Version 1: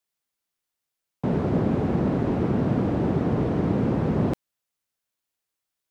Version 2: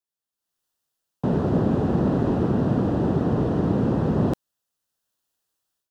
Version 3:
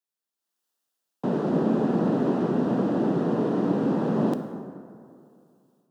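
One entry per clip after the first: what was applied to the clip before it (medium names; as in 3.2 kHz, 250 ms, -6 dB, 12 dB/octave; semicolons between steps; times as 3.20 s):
peaking EQ 2.2 kHz -14 dB 0.26 oct; level rider gain up to 13.5 dB; trim -8 dB
high-pass 180 Hz 24 dB/octave; plate-style reverb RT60 2.4 s, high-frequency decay 0.5×, DRR 6.5 dB; trim -1.5 dB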